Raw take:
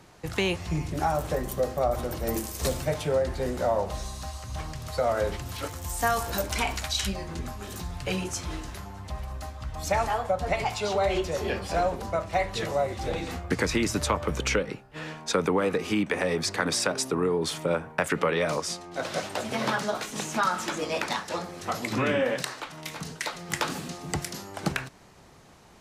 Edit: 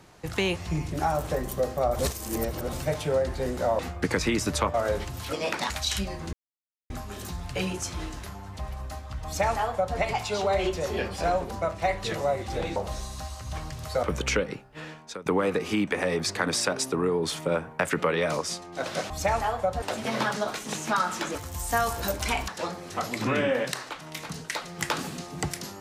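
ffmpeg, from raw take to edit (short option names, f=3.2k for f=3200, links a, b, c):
-filter_complex "[0:a]asplit=15[a][b][c][d][e][f][g][h][i][j][k][l][m][n][o];[a]atrim=end=1.992[p];[b]atrim=start=1.988:end=2.732,asetpts=PTS-STARTPTS,areverse[q];[c]atrim=start=2.728:end=3.792[r];[d]atrim=start=13.268:end=14.222[s];[e]atrim=start=5.058:end=5.652[t];[f]atrim=start=20.818:end=21.192[u];[g]atrim=start=6.778:end=7.41,asetpts=PTS-STARTPTS,afade=t=out:st=0.628:d=0.004:c=hsin,apad=pad_dur=0.57[v];[h]atrim=start=7.41:end=13.272,asetpts=PTS-STARTPTS,afade=t=in:d=0.004:c=hsin[w];[i]atrim=start=3.788:end=5.062[x];[j]atrim=start=14.218:end=15.45,asetpts=PTS-STARTPTS,afade=t=out:st=0.632:d=0.6:silence=0.0707946[y];[k]atrim=start=15.45:end=19.292,asetpts=PTS-STARTPTS,afade=t=in:d=0.004:c=hsin:silence=0.0707946[z];[l]atrim=start=9.758:end=10.482[aa];[m]atrim=start=19.288:end=20.822[ab];[n]atrim=start=5.648:end=6.782[ac];[o]atrim=start=21.188[ad];[p][q]acrossfade=d=0.004:c1=hsin:c2=hsin[ae];[ae][r]acrossfade=d=0.004:c1=hsin:c2=hsin[af];[af][s]acrossfade=d=0.004:c1=hsin:c2=hsin[ag];[ag][t]acrossfade=d=0.004:c1=hsin:c2=hsin[ah];[ah][u]acrossfade=d=0.004:c1=hsin:c2=hsin[ai];[v][w]concat=n=2:v=0:a=1[aj];[ai][aj]acrossfade=d=0.004:c1=hsin:c2=hsin[ak];[ak][x]acrossfade=d=0.004:c1=hsin:c2=hsin[al];[y][z]concat=n=2:v=0:a=1[am];[al][am]acrossfade=d=0.004:c1=hsin:c2=hsin[an];[an][aa]acrossfade=d=0.004:c1=hsin:c2=hsin[ao];[ao][ab]acrossfade=d=0.004:c1=hsin:c2=hsin[ap];[ap][ac]acrossfade=d=0.004:c1=hsin:c2=hsin[aq];[aq][ad]acrossfade=d=0.004:c1=hsin:c2=hsin"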